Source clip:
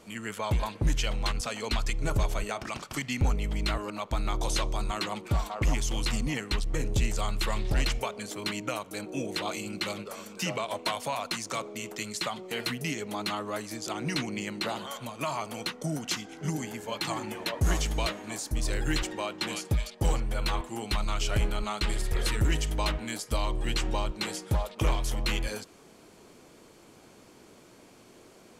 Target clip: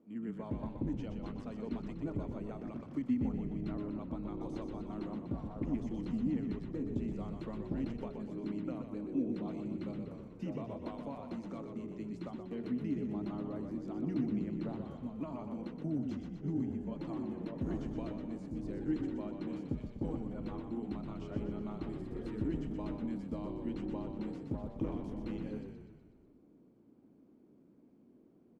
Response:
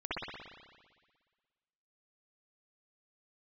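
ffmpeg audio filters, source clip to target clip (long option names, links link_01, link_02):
-filter_complex "[0:a]agate=range=-6dB:threshold=-42dB:ratio=16:detection=peak,bandpass=frequency=260:width_type=q:width=3.1:csg=0,asplit=9[link_01][link_02][link_03][link_04][link_05][link_06][link_07][link_08][link_09];[link_02]adelay=123,afreqshift=-33,volume=-6dB[link_10];[link_03]adelay=246,afreqshift=-66,volume=-10.7dB[link_11];[link_04]adelay=369,afreqshift=-99,volume=-15.5dB[link_12];[link_05]adelay=492,afreqshift=-132,volume=-20.2dB[link_13];[link_06]adelay=615,afreqshift=-165,volume=-24.9dB[link_14];[link_07]adelay=738,afreqshift=-198,volume=-29.7dB[link_15];[link_08]adelay=861,afreqshift=-231,volume=-34.4dB[link_16];[link_09]adelay=984,afreqshift=-264,volume=-39.1dB[link_17];[link_01][link_10][link_11][link_12][link_13][link_14][link_15][link_16][link_17]amix=inputs=9:normalize=0,volume=3dB"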